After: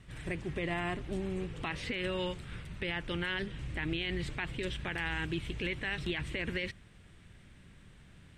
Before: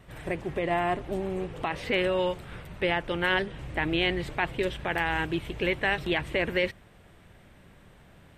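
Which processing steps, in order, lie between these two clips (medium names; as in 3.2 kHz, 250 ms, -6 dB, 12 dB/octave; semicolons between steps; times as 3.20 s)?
low-pass 10 kHz 24 dB/octave; peaking EQ 680 Hz -12 dB 1.8 oct; peak limiter -25 dBFS, peak gain reduction 9 dB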